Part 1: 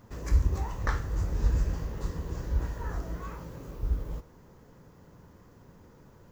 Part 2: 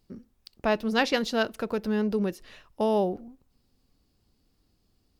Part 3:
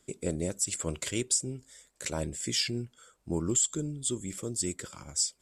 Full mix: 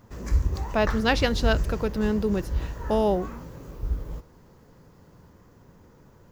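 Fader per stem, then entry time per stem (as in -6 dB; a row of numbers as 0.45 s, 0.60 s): +1.0 dB, +1.5 dB, mute; 0.00 s, 0.10 s, mute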